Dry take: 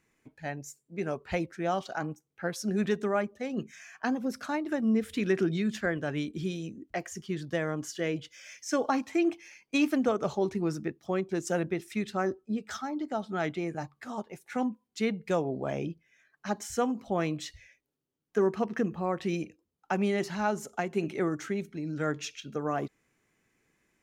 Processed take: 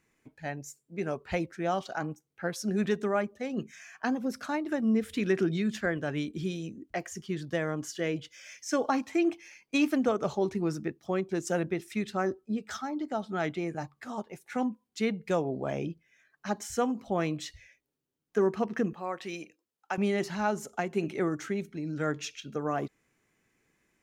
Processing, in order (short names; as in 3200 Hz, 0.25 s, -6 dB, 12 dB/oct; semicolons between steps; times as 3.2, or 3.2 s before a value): 18.93–19.98 HPF 760 Hz 6 dB/oct